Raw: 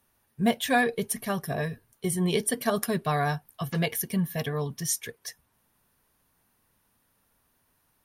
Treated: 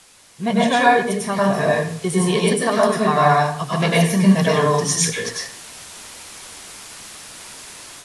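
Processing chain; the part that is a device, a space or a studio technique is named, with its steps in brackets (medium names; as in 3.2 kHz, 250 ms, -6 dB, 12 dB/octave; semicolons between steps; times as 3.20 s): filmed off a television (band-pass 150–7800 Hz; peaking EQ 1 kHz +8 dB 0.5 oct; reverberation RT60 0.55 s, pre-delay 91 ms, DRR -5 dB; white noise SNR 22 dB; level rider gain up to 12 dB; trim -1 dB; AAC 48 kbps 24 kHz)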